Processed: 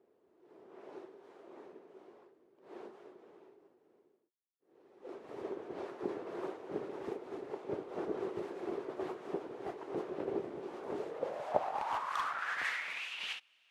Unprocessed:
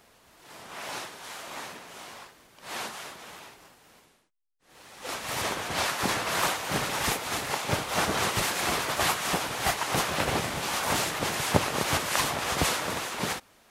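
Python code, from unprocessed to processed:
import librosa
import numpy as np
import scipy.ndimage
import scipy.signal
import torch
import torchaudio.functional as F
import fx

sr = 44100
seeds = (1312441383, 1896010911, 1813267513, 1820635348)

y = fx.filter_sweep_bandpass(x, sr, from_hz=380.0, to_hz=2800.0, start_s=10.92, end_s=13.14, q=5.2)
y = fx.clip_hard(y, sr, threshold_db=-30.5, at=(11.67, 12.25))
y = y * librosa.db_to_amplitude(2.0)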